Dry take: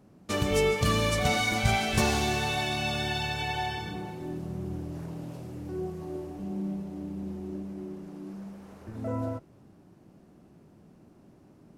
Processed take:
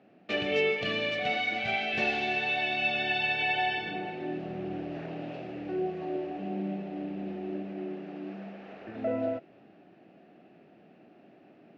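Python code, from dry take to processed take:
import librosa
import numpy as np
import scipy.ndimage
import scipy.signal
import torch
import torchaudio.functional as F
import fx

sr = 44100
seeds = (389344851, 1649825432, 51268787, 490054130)

y = fx.dynamic_eq(x, sr, hz=1100.0, q=1.6, threshold_db=-47.0, ratio=4.0, max_db=-7)
y = fx.rider(y, sr, range_db=5, speed_s=2.0)
y = fx.cabinet(y, sr, low_hz=270.0, low_slope=12, high_hz=3800.0, hz=(700.0, 1000.0, 1800.0, 2600.0), db=(8, -10, 5, 9))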